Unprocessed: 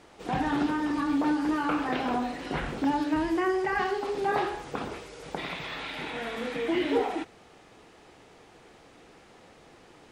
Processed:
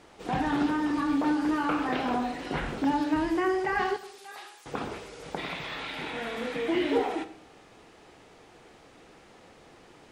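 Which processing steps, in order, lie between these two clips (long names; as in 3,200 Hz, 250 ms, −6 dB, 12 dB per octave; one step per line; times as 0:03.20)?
0:03.96–0:04.66: first difference
convolution reverb RT60 0.75 s, pre-delay 5 ms, DRR 13 dB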